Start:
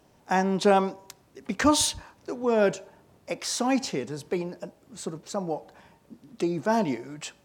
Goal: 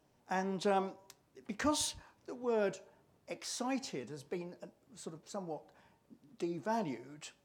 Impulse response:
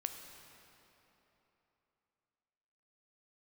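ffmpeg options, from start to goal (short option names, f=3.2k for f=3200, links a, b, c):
-af "flanger=delay=6.2:depth=3.3:regen=77:speed=1.6:shape=triangular,volume=-7dB"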